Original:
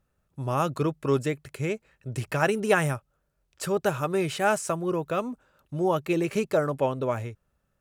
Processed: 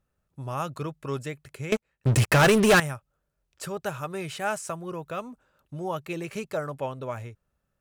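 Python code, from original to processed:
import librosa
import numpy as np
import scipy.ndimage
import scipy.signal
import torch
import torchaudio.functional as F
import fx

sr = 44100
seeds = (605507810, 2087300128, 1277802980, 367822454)

y = fx.dynamic_eq(x, sr, hz=330.0, q=0.9, threshold_db=-37.0, ratio=4.0, max_db=-6)
y = fx.leveller(y, sr, passes=5, at=(1.72, 2.8))
y = y * 10.0 ** (-3.5 / 20.0)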